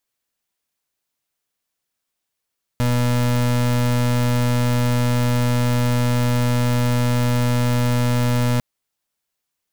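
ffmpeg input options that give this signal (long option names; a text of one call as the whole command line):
ffmpeg -f lavfi -i "aevalsrc='0.126*(2*lt(mod(122*t,1),0.32)-1)':duration=5.8:sample_rate=44100" out.wav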